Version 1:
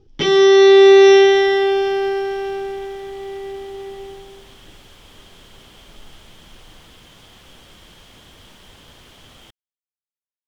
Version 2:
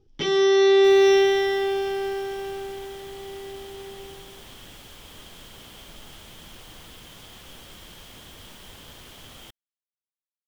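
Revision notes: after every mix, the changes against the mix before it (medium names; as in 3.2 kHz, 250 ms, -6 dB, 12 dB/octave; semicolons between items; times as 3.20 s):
first sound -8.0 dB; master: add treble shelf 11 kHz +11.5 dB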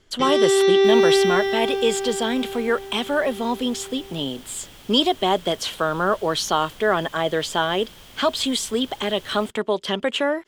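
speech: unmuted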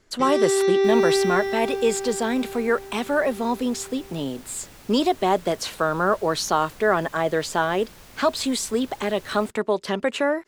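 first sound -3.5 dB; master: add peaking EQ 3.2 kHz -13 dB 0.27 oct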